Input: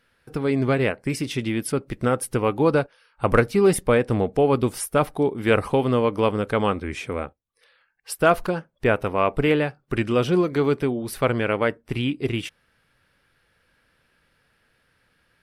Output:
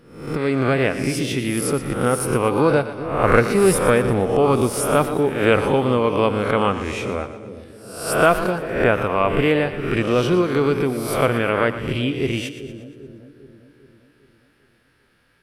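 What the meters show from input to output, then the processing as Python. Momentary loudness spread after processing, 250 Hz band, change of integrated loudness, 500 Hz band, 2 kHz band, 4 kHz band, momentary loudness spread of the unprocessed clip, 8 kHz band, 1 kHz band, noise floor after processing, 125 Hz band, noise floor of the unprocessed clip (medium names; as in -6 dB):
10 LU, +2.5 dB, +3.0 dB, +3.0 dB, +4.5 dB, +4.5 dB, 8 LU, +6.0 dB, +4.0 dB, -60 dBFS, +2.5 dB, -67 dBFS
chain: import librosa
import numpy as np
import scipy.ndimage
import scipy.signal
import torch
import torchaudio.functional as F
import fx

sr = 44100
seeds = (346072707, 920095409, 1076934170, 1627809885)

y = fx.spec_swells(x, sr, rise_s=0.67)
y = fx.echo_split(y, sr, split_hz=550.0, low_ms=399, high_ms=118, feedback_pct=52, wet_db=-12.0)
y = y * 10.0 ** (1.0 / 20.0)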